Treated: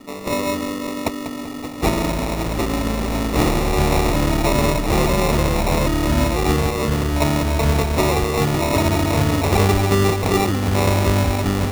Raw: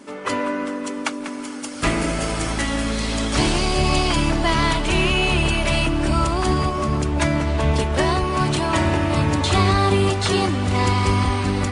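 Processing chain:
decimation without filtering 28×
level +1.5 dB

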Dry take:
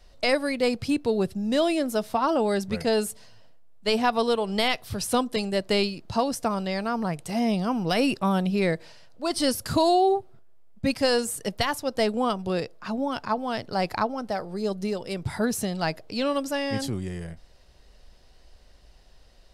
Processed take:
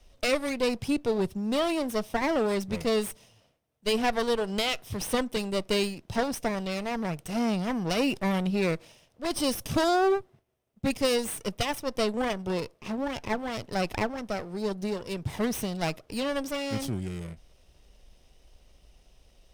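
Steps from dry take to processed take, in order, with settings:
lower of the sound and its delayed copy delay 0.34 ms
level −2 dB

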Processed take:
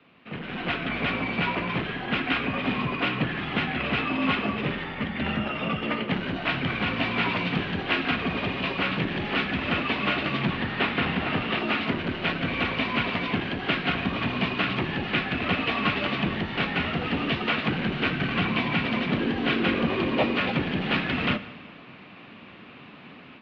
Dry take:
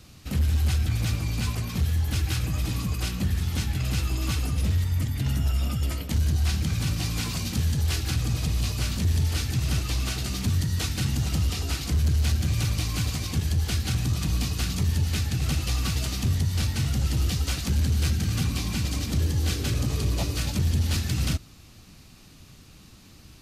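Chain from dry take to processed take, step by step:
0:10.51–0:11.59: variable-slope delta modulation 32 kbit/s
automatic gain control gain up to 12 dB
on a send at −13 dB: convolution reverb RT60 1.5 s, pre-delay 7 ms
on the sum: single-sideband voice off tune −55 Hz 260–3,000 Hz

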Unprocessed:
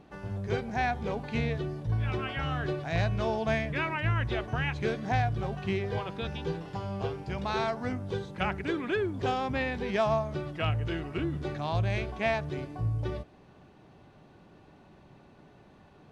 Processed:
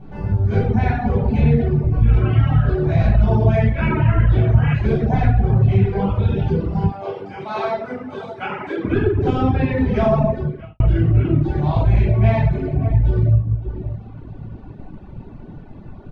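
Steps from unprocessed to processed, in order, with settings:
spectral tilt −3 dB per octave
slap from a distant wall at 98 metres, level −12 dB
convolution reverb RT60 1.4 s, pre-delay 9 ms, DRR −10 dB
reverb reduction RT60 1.2 s
0:10.31–0:10.80: fade out quadratic
downward compressor 1.5 to 1, threshold −18 dBFS, peak gain reduction 6.5 dB
0:06.92–0:08.85: high-pass filter 450 Hz 12 dB per octave
level −1 dB

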